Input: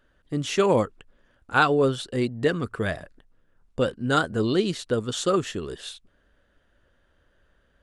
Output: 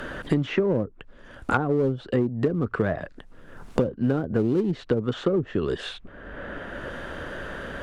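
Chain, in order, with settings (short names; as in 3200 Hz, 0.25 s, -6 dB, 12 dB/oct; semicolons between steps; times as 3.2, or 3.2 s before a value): treble ducked by the level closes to 440 Hz, closed at -19.5 dBFS; in parallel at -7 dB: overloaded stage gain 25 dB; on the sum: three-band squash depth 100%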